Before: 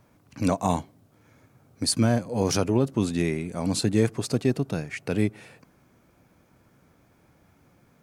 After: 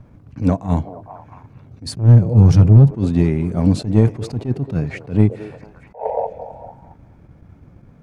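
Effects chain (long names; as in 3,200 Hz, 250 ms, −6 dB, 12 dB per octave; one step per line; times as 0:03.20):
0:01.95–0:02.91: low shelf with overshoot 210 Hz +7.5 dB, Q 1.5
0:05.94–0:06.27: sound drawn into the spectrogram noise 430–960 Hz −26 dBFS
in parallel at −2 dB: downward compressor, threshold −28 dBFS, peak gain reduction 15.5 dB
on the sum: RIAA equalisation playback
transient designer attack +7 dB, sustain +2 dB
soft clipping −0.5 dBFS, distortion −12 dB
on a send: echo through a band-pass that steps 224 ms, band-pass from 480 Hz, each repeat 0.7 octaves, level −10.5 dB
on the sum: level that may rise only so fast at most 200 dB per second
level −1 dB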